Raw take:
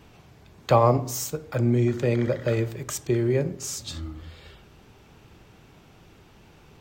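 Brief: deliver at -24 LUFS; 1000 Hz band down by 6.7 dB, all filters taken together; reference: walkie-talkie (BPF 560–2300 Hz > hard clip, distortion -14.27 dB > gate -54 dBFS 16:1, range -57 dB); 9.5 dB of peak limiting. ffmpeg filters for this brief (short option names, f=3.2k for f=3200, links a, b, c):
-af "equalizer=f=1k:t=o:g=-7.5,alimiter=limit=-17dB:level=0:latency=1,highpass=560,lowpass=2.3k,asoftclip=type=hard:threshold=-29dB,agate=range=-57dB:threshold=-54dB:ratio=16,volume=14dB"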